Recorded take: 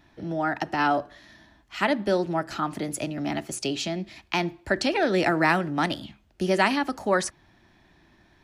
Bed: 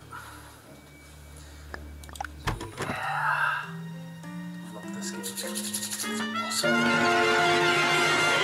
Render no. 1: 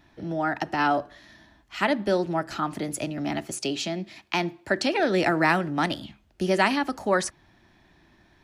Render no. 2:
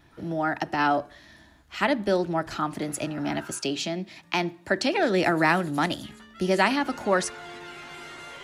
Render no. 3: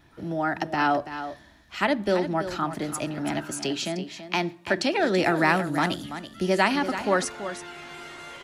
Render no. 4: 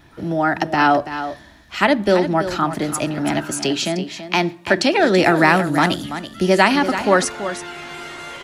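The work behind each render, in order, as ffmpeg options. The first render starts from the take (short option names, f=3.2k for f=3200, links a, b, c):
-filter_complex "[0:a]asettb=1/sr,asplit=3[a][b][c];[a]atrim=end=3.514[d];[b]atrim=start=3.51:end=5,asetpts=PTS-STARTPTS,afade=t=in:d=0.004:c=qsin,afade=t=out:st=1.486:d=0.004:c=qsin,highpass=130[e];[c]atrim=start=4.996[f];[d][e]acrossfade=d=0.004:c1=hsin:c2=qsin[g];[g][f]acrossfade=d=0.004:c1=qsin:c2=hsin"
-filter_complex "[1:a]volume=-18.5dB[a];[0:a][a]amix=inputs=2:normalize=0"
-af "aecho=1:1:332:0.282"
-af "volume=8dB,alimiter=limit=-2dB:level=0:latency=1"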